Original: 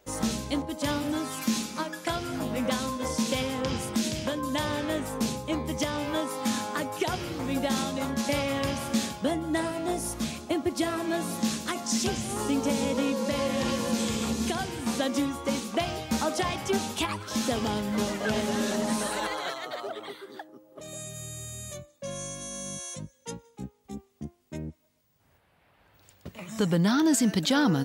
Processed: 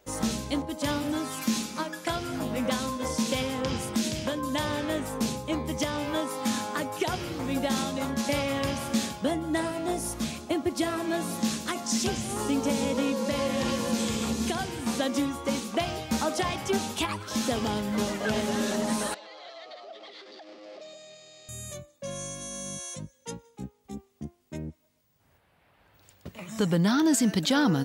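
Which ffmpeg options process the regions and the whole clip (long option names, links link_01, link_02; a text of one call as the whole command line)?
ffmpeg -i in.wav -filter_complex "[0:a]asettb=1/sr,asplit=3[link_01][link_02][link_03];[link_01]atrim=end=19.144[link_04];[link_02]atrim=start=19.14:end=21.49,asetpts=PTS-STARTPTS,afade=type=in:duration=0.004:curve=qsin,afade=type=out:start_time=2.346:duration=0.004:curve=qsin,aeval=exprs='val(0)+0.5*0.0119*sgn(val(0))':channel_layout=same,acompressor=threshold=-41dB:ratio=8:attack=3.2:release=140:knee=1:detection=peak,highpass=frequency=250:width=0.5412,highpass=frequency=250:width=1.3066,equalizer=frequency=270:width_type=q:width=4:gain=-9,equalizer=frequency=400:width_type=q:width=4:gain=-6,equalizer=frequency=670:width_type=q:width=4:gain=5,equalizer=frequency=950:width_type=q:width=4:gain=-9,equalizer=frequency=1500:width_type=q:width=4:gain=-9,equalizer=frequency=4700:width_type=q:width=4:gain=6,lowpass=frequency=5300:width=0.5412,lowpass=frequency=5300:width=1.3066[link_05];[link_03]atrim=start=21.486[link_06];[link_04][link_05]acrossfade=duration=0.004:curve1=hsin:curve2=qsin[link_07];[link_07][link_06]acrossfade=duration=0.004:curve1=qsin:curve2=hsin" out.wav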